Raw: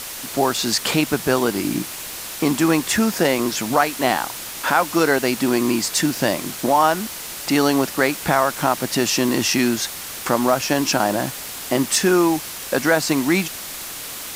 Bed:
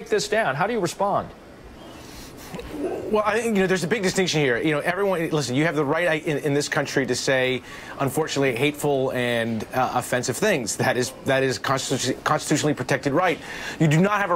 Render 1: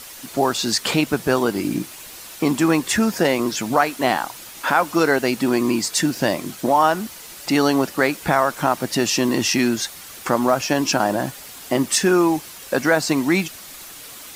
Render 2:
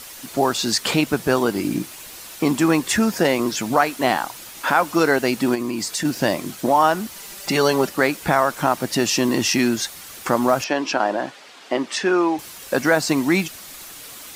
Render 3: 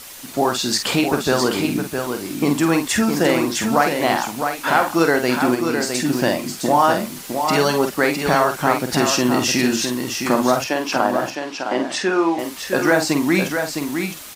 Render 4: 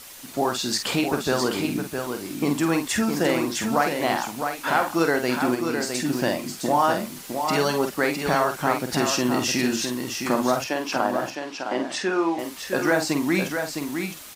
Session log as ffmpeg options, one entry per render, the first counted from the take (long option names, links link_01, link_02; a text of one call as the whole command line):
ffmpeg -i in.wav -af "afftdn=noise_reduction=8:noise_floor=-32" out.wav
ffmpeg -i in.wav -filter_complex "[0:a]asplit=3[link_01][link_02][link_03];[link_01]afade=type=out:start_time=5.54:duration=0.02[link_04];[link_02]acompressor=threshold=-21dB:ratio=6:attack=3.2:release=140:knee=1:detection=peak,afade=type=in:start_time=5.54:duration=0.02,afade=type=out:start_time=6.04:duration=0.02[link_05];[link_03]afade=type=in:start_time=6.04:duration=0.02[link_06];[link_04][link_05][link_06]amix=inputs=3:normalize=0,asettb=1/sr,asplit=3[link_07][link_08][link_09];[link_07]atrim=end=7.144[link_10];[link_08]atrim=start=7.14:end=7.89,asetpts=PTS-STARTPTS,afade=type=in:duration=0.004:curve=qsin,afade=type=out:start_time=0.746:duration=0.004:curve=qsin,aecho=1:1:5.1:0.65,atrim=end_sample=33075[link_11];[link_09]atrim=start=7.886[link_12];[link_10][link_11]acrossfade=duration=0.004:curve1=hsin:curve2=qsin[link_13];[link_13][link_12]acrossfade=duration=0.004:curve1=qsin:curve2=hsin,asettb=1/sr,asplit=3[link_14][link_15][link_16];[link_14]atrim=end=10.644[link_17];[link_15]atrim=start=10.64:end=12.39,asetpts=PTS-STARTPTS,afade=type=in:duration=0.004:curve=qsin,afade=type=out:start_time=1.746:duration=0.004:curve=qsin,highpass=320,lowpass=4000[link_18];[link_16]atrim=start=12.386[link_19];[link_17][link_18]acrossfade=duration=0.004:curve1=hsin:curve2=qsin[link_20];[link_20][link_19]acrossfade=duration=0.004:curve1=qsin:curve2=hsin" out.wav
ffmpeg -i in.wav -filter_complex "[0:a]asplit=2[link_01][link_02];[link_02]adelay=48,volume=-7dB[link_03];[link_01][link_03]amix=inputs=2:normalize=0,aecho=1:1:660:0.501" out.wav
ffmpeg -i in.wav -af "volume=-5dB" out.wav